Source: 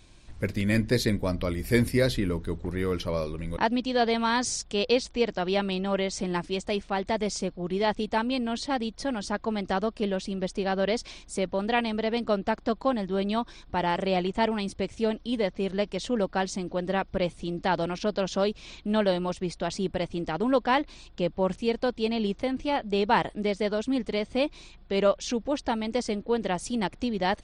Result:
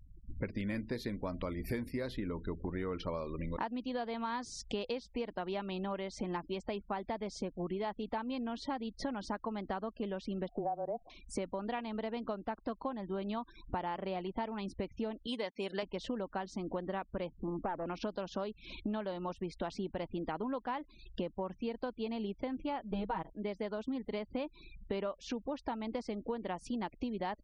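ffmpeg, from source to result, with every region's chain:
-filter_complex "[0:a]asettb=1/sr,asplit=3[a][b][c];[a]atrim=end=10.484[d];[b]atrim=start=10.48:end=11.1,asetpts=PTS-STARTPTS,afade=t=in:d=0.004:c=qsin,afade=t=out:st=0.616:d=0.004:c=qsin,afreqshift=-22,lowpass=f=720:t=q:w=7.1[e];[c]atrim=start=11.096[f];[d][e]acrossfade=d=0.004:c1=hsin:c2=qsin[g];[g][f]acrossfade=d=0.004:c1=qsin:c2=hsin,asettb=1/sr,asplit=3[h][i][j];[h]atrim=end=15.274[k];[i]atrim=start=15.27:end=15.83,asetpts=PTS-STARTPTS,afade=t=in:d=0.004:c=qsin,afade=t=out:st=0.556:d=0.004:c=qsin,lowpass=f=10k:w=0.5412,lowpass=f=10k:w=1.3066,aemphasis=mode=production:type=riaa[l];[j]atrim=start=15.826[m];[k][l]acrossfade=d=0.004:c1=hsin:c2=qsin[n];[n][m]acrossfade=d=0.004:c1=qsin:c2=hsin,asettb=1/sr,asplit=3[o][p][q];[o]atrim=end=17.294[r];[p]atrim=start=17.29:end=17.86,asetpts=PTS-STARTPTS,afade=t=in:d=0.004:c=qsin,afade=t=out:st=0.566:d=0.004:c=qsin,lowpass=f=1.2k:w=0.5412,lowpass=f=1.2k:w=1.3066,aeval=exprs='clip(val(0),-1,0.0376)':c=same[s];[q]atrim=start=17.856[t];[r][s]acrossfade=d=0.004:c1=hsin:c2=qsin[u];[u][t]acrossfade=d=0.004:c1=qsin:c2=hsin,asettb=1/sr,asplit=3[v][w][x];[v]atrim=end=22.914[y];[w]atrim=start=22.91:end=23.33,asetpts=PTS-STARTPTS,afade=t=in:d=0.004:c=qsin,afade=t=out:st=0.416:d=0.004:c=qsin,aemphasis=mode=reproduction:type=bsi,agate=range=-7dB:threshold=-26dB:ratio=16:release=100:detection=peak,aecho=1:1:6.3:0.89,atrim=end_sample=18522[z];[x]atrim=start=23.326[aa];[y][z]acrossfade=d=0.004:c1=hsin:c2=qsin[ab];[ab][aa]acrossfade=d=0.004:c1=qsin:c2=hsin,afftfilt=real='re*gte(hypot(re,im),0.00708)':imag='im*gte(hypot(re,im),0.00708)':win_size=1024:overlap=0.75,equalizer=f=125:t=o:w=1:g=-3,equalizer=f=250:t=o:w=1:g=4,equalizer=f=1k:t=o:w=1:g=7,equalizer=f=8k:t=o:w=1:g=-10,acompressor=threshold=-35dB:ratio=16,volume=1dB"

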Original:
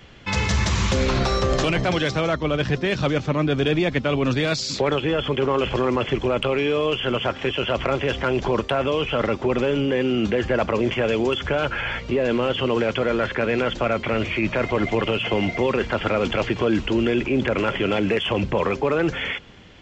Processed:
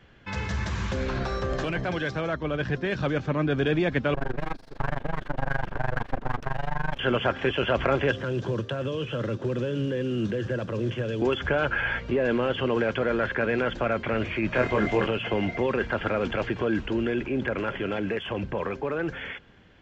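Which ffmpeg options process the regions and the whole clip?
-filter_complex "[0:a]asettb=1/sr,asplit=3[a][b][c];[a]atrim=end=4.144[d];[b]atrim=start=4.14:end=6.99,asetpts=PTS-STARTPTS,afade=t=in:d=0.004:c=qsin,afade=t=out:st=2.846:d=0.004:c=qsin,lowpass=1.4k,aeval=exprs='abs(val(0))':c=same,tremolo=f=24:d=0.947[e];[c]atrim=start=6.986[f];[d][e]acrossfade=d=0.004:c1=hsin:c2=qsin[g];[g][f]acrossfade=d=0.004:c1=qsin:c2=hsin,asettb=1/sr,asplit=3[h][i][j];[h]atrim=end=8.114[k];[i]atrim=start=8.11:end=11.22,asetpts=PTS-STARTPTS,afade=t=in:d=0.004:c=qsin,afade=t=out:st=3.106:d=0.004:c=qsin,acrossover=split=190|3000[l][m][n];[m]acompressor=threshold=-41dB:ratio=2:attack=3.2:release=140:knee=2.83:detection=peak[o];[l][o][n]amix=inputs=3:normalize=0,acrusher=bits=4:mode=log:mix=0:aa=0.000001,highpass=f=110:w=0.5412,highpass=f=110:w=1.3066,equalizer=f=110:t=q:w=4:g=7,equalizer=f=340:t=q:w=4:g=5,equalizer=f=520:t=q:w=4:g=7,equalizer=f=780:t=q:w=4:g=-7,equalizer=f=2.2k:t=q:w=4:g=-8,equalizer=f=4.6k:t=q:w=4:g=-4,lowpass=f=7k:w=0.5412,lowpass=f=7k:w=1.3066[p];[j]atrim=start=11.216[q];[k][p]acrossfade=d=0.004:c1=hsin:c2=qsin[r];[r][q]acrossfade=d=0.004:c1=qsin:c2=hsin,asettb=1/sr,asplit=3[s][t][u];[s]atrim=end=14.524[v];[t]atrim=start=14.52:end=15.07,asetpts=PTS-STARTPTS,afade=t=in:d=0.004:c=qsin,afade=t=out:st=0.546:d=0.004:c=qsin,highshelf=f=4.9k:g=8,asplit=2[w][x];[x]adelay=24,volume=-3dB[y];[w][y]amix=inputs=2:normalize=0,atrim=end_sample=24255[z];[u]atrim=start=15.066[aa];[v][z]acrossfade=d=0.004:c1=hsin:c2=qsin[ab];[ab][aa]acrossfade=d=0.004:c1=qsin:c2=hsin,equalizer=f=1.6k:w=7.5:g=9,dynaudnorm=f=210:g=31:m=11.5dB,highshelf=f=3.4k:g=-9.5,volume=-8dB"

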